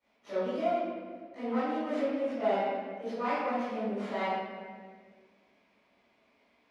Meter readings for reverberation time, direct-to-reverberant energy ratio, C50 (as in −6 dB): 1.7 s, −17.5 dB, −5.0 dB